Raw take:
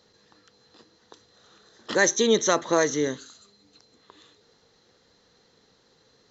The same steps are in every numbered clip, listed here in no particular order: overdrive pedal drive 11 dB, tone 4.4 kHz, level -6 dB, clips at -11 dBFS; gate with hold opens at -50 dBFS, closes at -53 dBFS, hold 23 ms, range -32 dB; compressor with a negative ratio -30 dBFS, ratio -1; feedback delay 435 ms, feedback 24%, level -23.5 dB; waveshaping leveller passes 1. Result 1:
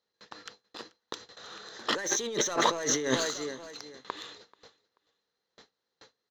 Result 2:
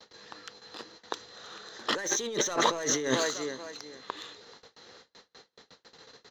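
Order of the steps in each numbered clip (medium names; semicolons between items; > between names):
gate with hold > waveshaping leveller > overdrive pedal > feedback delay > compressor with a negative ratio; waveshaping leveller > feedback delay > overdrive pedal > gate with hold > compressor with a negative ratio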